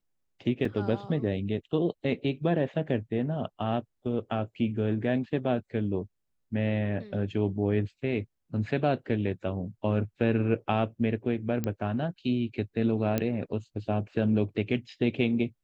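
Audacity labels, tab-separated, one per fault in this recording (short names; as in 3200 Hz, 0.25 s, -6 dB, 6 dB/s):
0.650000	0.650000	gap 3 ms
11.640000	11.640000	pop -17 dBFS
13.180000	13.180000	pop -13 dBFS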